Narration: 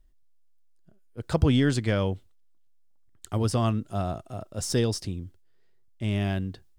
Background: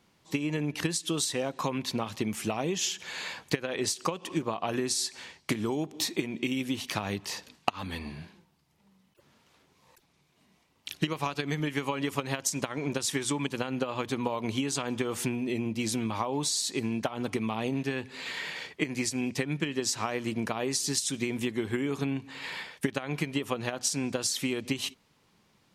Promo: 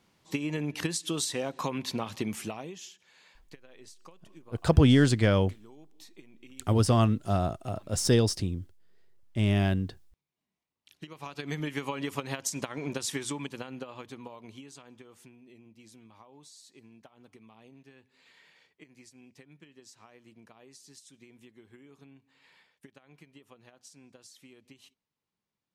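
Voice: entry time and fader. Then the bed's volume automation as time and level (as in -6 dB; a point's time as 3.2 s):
3.35 s, +2.0 dB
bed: 2.35 s -1.5 dB
3.06 s -22.5 dB
10.8 s -22.5 dB
11.52 s -3 dB
13.12 s -3 dB
15.3 s -24 dB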